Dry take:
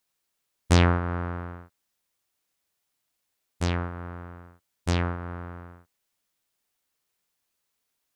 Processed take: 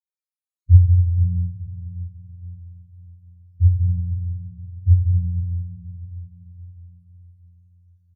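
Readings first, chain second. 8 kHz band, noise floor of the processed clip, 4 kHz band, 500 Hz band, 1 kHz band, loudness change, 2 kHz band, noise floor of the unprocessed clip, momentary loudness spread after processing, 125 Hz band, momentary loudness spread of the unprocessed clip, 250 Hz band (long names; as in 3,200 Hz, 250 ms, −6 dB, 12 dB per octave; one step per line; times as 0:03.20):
below −35 dB, below −85 dBFS, below −40 dB, below −40 dB, below −40 dB, +7.5 dB, below −40 dB, −79 dBFS, 22 LU, +12.0 dB, 21 LU, −7.0 dB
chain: in parallel at −5 dB: asymmetric clip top −27 dBFS, bottom −8 dBFS
on the sum: leveller curve on the samples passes 3
spectral peaks only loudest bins 2
comb filter 2.6 ms, depth 58%
on a send: feedback delay with all-pass diffusion 502 ms, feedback 45%, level −10.5 dB
on the sum: feedback delay network reverb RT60 2.5 s, low-frequency decay 0.7×, high-frequency decay 0.75×, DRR −7 dB
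level −2.5 dB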